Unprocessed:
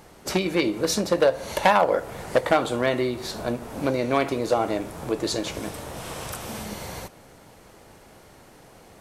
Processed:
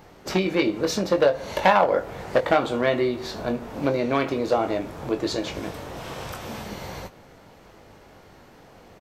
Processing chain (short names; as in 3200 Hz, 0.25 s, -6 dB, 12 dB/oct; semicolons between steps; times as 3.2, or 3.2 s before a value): bell 9900 Hz -13.5 dB 0.88 oct; doubler 21 ms -8 dB